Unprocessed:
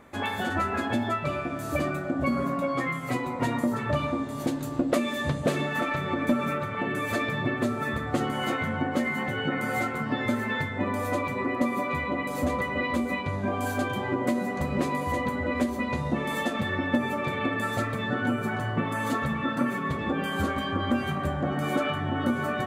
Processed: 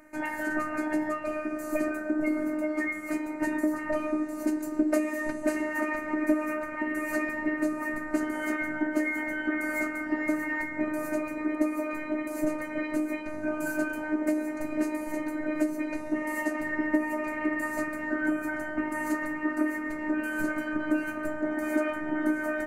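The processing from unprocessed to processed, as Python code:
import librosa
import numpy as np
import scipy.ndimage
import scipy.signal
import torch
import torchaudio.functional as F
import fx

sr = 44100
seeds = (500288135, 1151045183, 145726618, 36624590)

y = fx.fixed_phaser(x, sr, hz=700.0, stages=8)
y = fx.robotise(y, sr, hz=306.0)
y = y * 10.0 ** (2.5 / 20.0)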